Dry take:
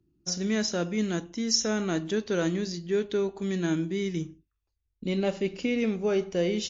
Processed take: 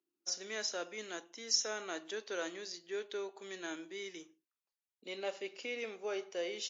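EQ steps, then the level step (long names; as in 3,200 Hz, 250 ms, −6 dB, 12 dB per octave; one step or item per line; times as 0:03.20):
Bessel high-pass filter 590 Hz, order 4
−6.0 dB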